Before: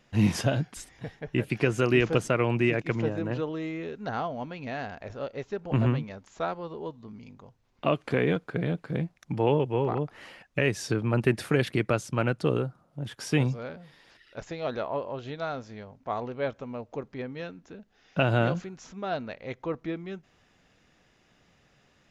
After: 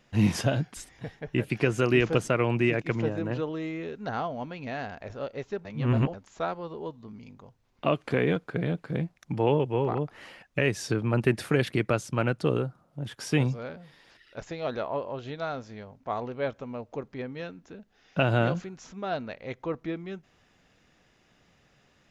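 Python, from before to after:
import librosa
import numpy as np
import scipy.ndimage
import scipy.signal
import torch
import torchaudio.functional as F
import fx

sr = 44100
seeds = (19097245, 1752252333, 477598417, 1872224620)

y = fx.edit(x, sr, fx.reverse_span(start_s=5.65, length_s=0.49), tone=tone)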